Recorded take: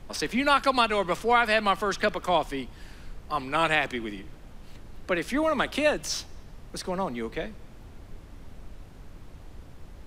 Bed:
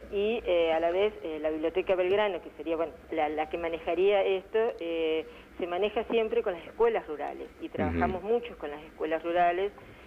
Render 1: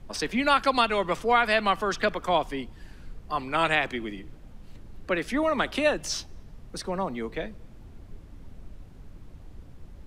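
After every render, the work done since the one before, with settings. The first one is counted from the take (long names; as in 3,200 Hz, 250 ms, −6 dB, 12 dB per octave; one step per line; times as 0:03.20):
broadband denoise 6 dB, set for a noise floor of −47 dBFS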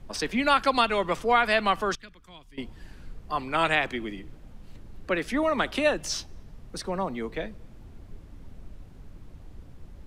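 0:01.95–0:02.58: guitar amp tone stack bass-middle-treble 6-0-2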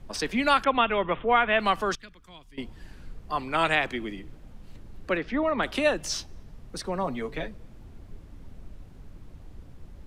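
0:00.64–0:01.60: Butterworth low-pass 3,500 Hz 96 dB per octave
0:05.17–0:05.63: high-frequency loss of the air 240 metres
0:07.03–0:07.48: comb filter 7.2 ms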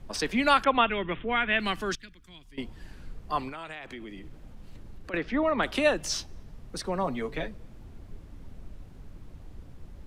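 0:00.89–0:02.45: flat-topped bell 770 Hz −9 dB
0:03.49–0:05.14: downward compressor 5 to 1, threshold −38 dBFS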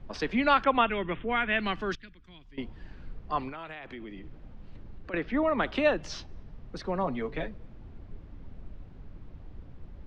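high-frequency loss of the air 200 metres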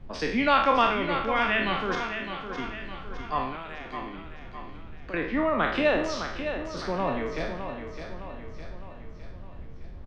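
peak hold with a decay on every bin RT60 0.62 s
repeating echo 610 ms, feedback 52%, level −8.5 dB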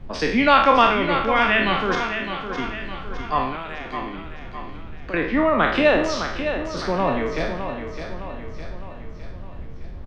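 level +6.5 dB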